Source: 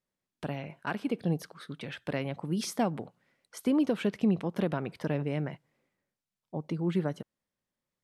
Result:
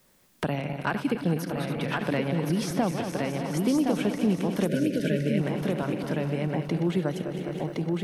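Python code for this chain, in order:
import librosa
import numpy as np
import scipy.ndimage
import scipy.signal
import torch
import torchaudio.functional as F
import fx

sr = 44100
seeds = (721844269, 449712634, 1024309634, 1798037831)

y = fx.reverse_delay_fb(x, sr, ms=104, feedback_pct=82, wet_db=-11)
y = fx.high_shelf(y, sr, hz=9700.0, db=7.5)
y = fx.echo_feedback(y, sr, ms=1066, feedback_pct=18, wet_db=-4.5)
y = fx.spec_box(y, sr, start_s=4.67, length_s=0.72, low_hz=660.0, high_hz=1400.0, gain_db=-26)
y = fx.band_squash(y, sr, depth_pct=70)
y = y * librosa.db_to_amplitude(3.0)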